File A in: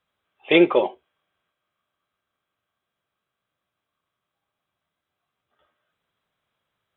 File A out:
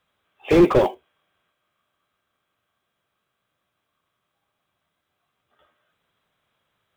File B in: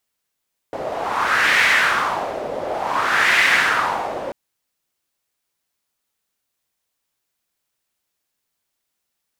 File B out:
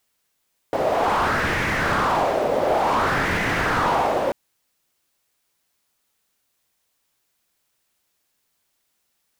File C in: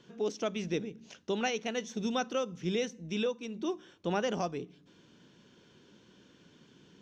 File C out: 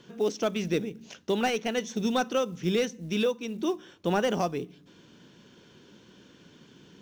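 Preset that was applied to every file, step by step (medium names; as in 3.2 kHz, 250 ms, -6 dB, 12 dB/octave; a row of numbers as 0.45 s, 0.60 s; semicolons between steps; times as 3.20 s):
short-mantissa float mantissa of 4-bit; slew-rate limiter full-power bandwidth 66 Hz; trim +5.5 dB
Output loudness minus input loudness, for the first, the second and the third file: +1.0 LU, -3.5 LU, +5.5 LU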